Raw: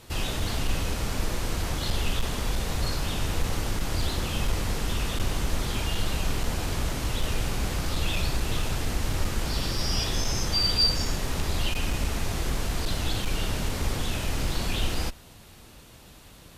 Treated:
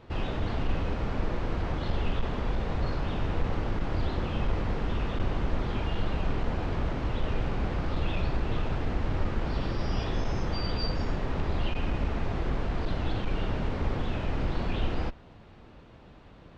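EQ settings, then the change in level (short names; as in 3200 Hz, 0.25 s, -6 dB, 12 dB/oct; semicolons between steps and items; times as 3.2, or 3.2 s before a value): tape spacing loss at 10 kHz 41 dB; low shelf 190 Hz -5 dB; +3.5 dB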